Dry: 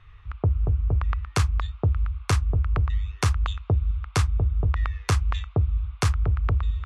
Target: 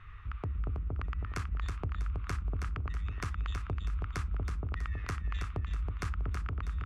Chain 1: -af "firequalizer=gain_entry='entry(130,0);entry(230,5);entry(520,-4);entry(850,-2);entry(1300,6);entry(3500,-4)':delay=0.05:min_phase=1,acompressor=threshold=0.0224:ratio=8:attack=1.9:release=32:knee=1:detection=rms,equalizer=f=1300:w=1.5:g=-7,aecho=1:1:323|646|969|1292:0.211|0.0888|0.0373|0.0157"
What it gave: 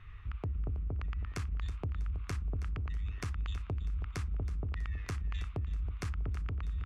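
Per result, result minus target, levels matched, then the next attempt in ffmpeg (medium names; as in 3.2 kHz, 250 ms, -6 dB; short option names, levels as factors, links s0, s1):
1 kHz band -5.5 dB; echo-to-direct -7.5 dB
-af "firequalizer=gain_entry='entry(130,0);entry(230,5);entry(520,-4);entry(850,-2);entry(1300,6);entry(3500,-4)':delay=0.05:min_phase=1,acompressor=threshold=0.0224:ratio=8:attack=1.9:release=32:knee=1:detection=rms,aecho=1:1:323|646|969|1292:0.211|0.0888|0.0373|0.0157"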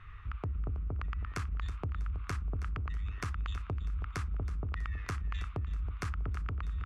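echo-to-direct -7.5 dB
-af "firequalizer=gain_entry='entry(130,0);entry(230,5);entry(520,-4);entry(850,-2);entry(1300,6);entry(3500,-4)':delay=0.05:min_phase=1,acompressor=threshold=0.0224:ratio=8:attack=1.9:release=32:knee=1:detection=rms,aecho=1:1:323|646|969|1292|1615:0.501|0.21|0.0884|0.0371|0.0156"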